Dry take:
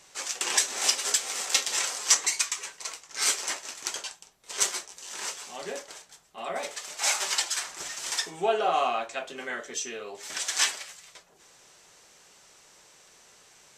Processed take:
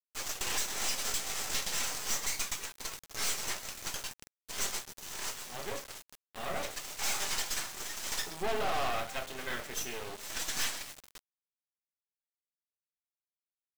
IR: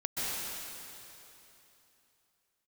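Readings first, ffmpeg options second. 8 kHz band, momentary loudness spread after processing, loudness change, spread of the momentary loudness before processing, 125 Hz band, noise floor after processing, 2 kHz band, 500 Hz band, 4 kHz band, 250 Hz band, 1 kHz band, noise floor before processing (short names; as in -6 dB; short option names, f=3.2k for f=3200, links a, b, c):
-8.5 dB, 10 LU, -7.5 dB, 15 LU, +7.5 dB, under -85 dBFS, -5.5 dB, -6.5 dB, -7.0 dB, -1.5 dB, -7.0 dB, -57 dBFS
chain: -filter_complex "[0:a]asplit=2[a][b];[1:a]atrim=start_sample=2205,afade=t=out:st=0.18:d=0.01,atrim=end_sample=8379,lowpass=8.6k[c];[b][c]afir=irnorm=-1:irlink=0,volume=-10dB[d];[a][d]amix=inputs=2:normalize=0,volume=24dB,asoftclip=hard,volume=-24dB,acrusher=bits=4:dc=4:mix=0:aa=0.000001,volume=-1dB"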